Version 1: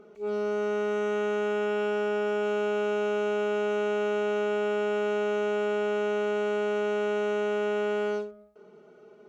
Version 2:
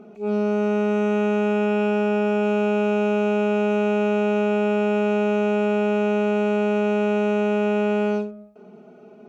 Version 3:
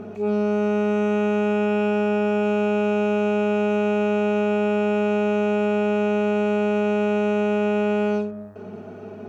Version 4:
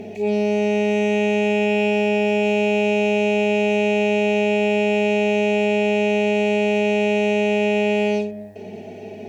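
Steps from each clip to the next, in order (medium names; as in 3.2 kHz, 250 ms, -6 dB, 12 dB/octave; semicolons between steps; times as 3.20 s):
small resonant body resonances 220/700/2500 Hz, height 14 dB, ringing for 30 ms; trim +1.5 dB
compression 2:1, threshold -34 dBFS, peak gain reduction 9 dB; mains buzz 100 Hz, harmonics 19, -57 dBFS -6 dB/octave; trim +8.5 dB
FFT filter 160 Hz 0 dB, 800 Hz +4 dB, 1.3 kHz -22 dB, 1.9 kHz +10 dB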